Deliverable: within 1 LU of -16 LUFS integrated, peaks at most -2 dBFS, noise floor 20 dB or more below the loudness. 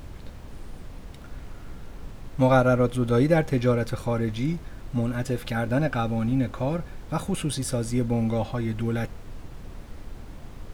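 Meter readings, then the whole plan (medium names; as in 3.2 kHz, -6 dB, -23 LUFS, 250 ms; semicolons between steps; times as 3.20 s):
noise floor -42 dBFS; noise floor target -46 dBFS; loudness -25.5 LUFS; peak level -7.0 dBFS; loudness target -16.0 LUFS
-> noise print and reduce 6 dB; trim +9.5 dB; peak limiter -2 dBFS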